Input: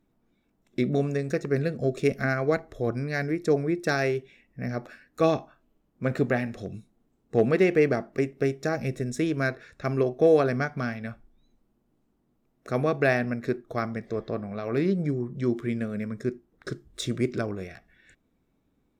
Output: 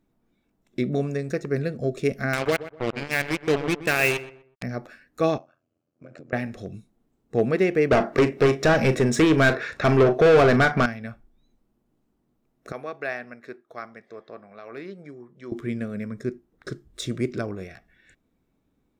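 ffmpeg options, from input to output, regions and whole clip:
-filter_complex "[0:a]asettb=1/sr,asplit=3[s0][s1][s2];[s0]atrim=end=2.334[s3];[s1]atrim=start=2.33:end=4.63,asetpts=PTS-STARTPTS,afade=t=in:d=0.004:c=qsin,afade=t=out:st=2.296:d=0.004:c=qsin,lowpass=f=2700:t=q:w=10,acrusher=bits=3:mix=0:aa=0.5,asplit=2[s4][s5];[s5]adelay=124,lowpass=f=1800:p=1,volume=0.211,asplit=2[s6][s7];[s7]adelay=124,lowpass=f=1800:p=1,volume=0.3,asplit=2[s8][s9];[s9]adelay=124,lowpass=f=1800:p=1,volume=0.3[s10];[s4][s6][s8][s10]amix=inputs=4:normalize=0,atrim=end_sample=101430[s11];[s2]atrim=start=4.626[s12];[s3][s11]acrossfade=d=0.004:c1=hsin:c2=qsin[s13];[s13][s12]acrossfade=d=0.004:c1=qsin:c2=hsin,asettb=1/sr,asplit=3[s14][s15][s16];[s14]atrim=end=5.384[s17];[s15]atrim=start=5.38:end=6.33,asetpts=PTS-STARTPTS,afade=t=in:d=0.004:c=qsin,afade=t=out:st=0.946:d=0.004:c=qsin,acompressor=threshold=0.0178:ratio=12:attack=3.2:release=140:knee=1:detection=peak,tremolo=f=85:d=0.947,highpass=f=110:w=0.5412,highpass=f=110:w=1.3066,equalizer=f=190:t=q:w=4:g=-9,equalizer=f=410:t=q:w=4:g=-4,equalizer=f=590:t=q:w=4:g=5,equalizer=f=920:t=q:w=4:g=-9,equalizer=f=1900:t=q:w=4:g=-6,equalizer=f=3600:t=q:w=4:g=-9,lowpass=f=7400:w=0.5412,lowpass=f=7400:w=1.3066[s18];[s16]atrim=start=6.326[s19];[s17][s18]acrossfade=d=0.004:c1=hsin:c2=qsin[s20];[s20][s19]acrossfade=d=0.004:c1=qsin:c2=hsin,asettb=1/sr,asplit=3[s21][s22][s23];[s21]atrim=end=7.914[s24];[s22]atrim=start=7.91:end=10.86,asetpts=PTS-STARTPTS,afade=t=in:d=0.004:c=qsin,afade=t=out:st=2.946:d=0.004:c=qsin,asplit=2[s25][s26];[s26]highpass=f=720:p=1,volume=20,asoftclip=type=tanh:threshold=0.335[s27];[s25][s27]amix=inputs=2:normalize=0,lowpass=f=2700:p=1,volume=0.501,lowshelf=f=170:g=5.5,asplit=2[s28][s29];[s29]adelay=38,volume=0.211[s30];[s28][s30]amix=inputs=2:normalize=0,atrim=end_sample=130095[s31];[s23]atrim=start=10.856[s32];[s24][s31]acrossfade=d=0.004:c1=hsin:c2=qsin[s33];[s33][s32]acrossfade=d=0.004:c1=qsin:c2=hsin,asettb=1/sr,asplit=3[s34][s35][s36];[s34]atrim=end=12.724[s37];[s35]atrim=start=12.72:end=15.52,asetpts=PTS-STARTPTS,afade=t=in:d=0.004:c=qsin,afade=t=out:st=2.796:d=0.004:c=qsin,highpass=f=1400:p=1,highshelf=f=3100:g=-11.5[s38];[s36]atrim=start=15.516[s39];[s37][s38]acrossfade=d=0.004:c1=hsin:c2=qsin[s40];[s40][s39]acrossfade=d=0.004:c1=qsin:c2=hsin"

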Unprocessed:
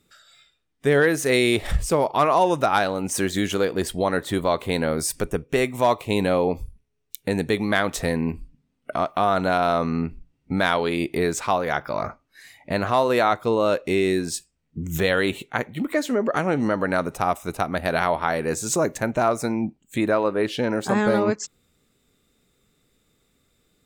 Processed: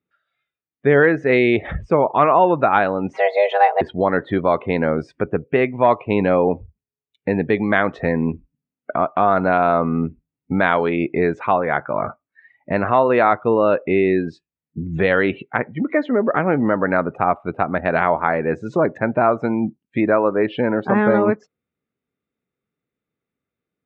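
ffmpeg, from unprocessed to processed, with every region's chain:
-filter_complex "[0:a]asettb=1/sr,asplit=3[s0][s1][s2];[s0]atrim=end=3.134[s3];[s1]atrim=start=3.13:end=3.81,asetpts=PTS-STARTPTS,afade=t=in:d=0.004:c=qsin,afade=t=out:st=0.676:d=0.004:c=qsin,aecho=1:1:6:0.83,atrim=end_sample=29988,afreqshift=300,adynamicsmooth=sensitivity=8:basefreq=3800[s4];[s2]atrim=start=3.806[s5];[s3][s4]acrossfade=d=0.004:c1=hsin:c2=qsin[s6];[s6][s5]acrossfade=d=0.004:c1=qsin:c2=hsin,highpass=100,afftdn=nr=20:nf=-37,lowpass=f=2600:w=0.5412,lowpass=f=2600:w=1.3066,volume=1.68"

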